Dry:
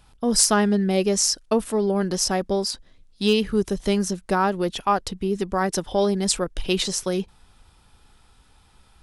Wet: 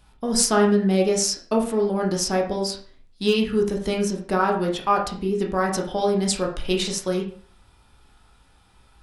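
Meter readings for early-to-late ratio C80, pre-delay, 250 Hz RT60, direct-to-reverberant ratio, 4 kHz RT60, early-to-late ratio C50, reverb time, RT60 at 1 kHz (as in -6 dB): 11.5 dB, 11 ms, 0.45 s, 0.0 dB, 0.35 s, 7.5 dB, 0.45 s, 0.45 s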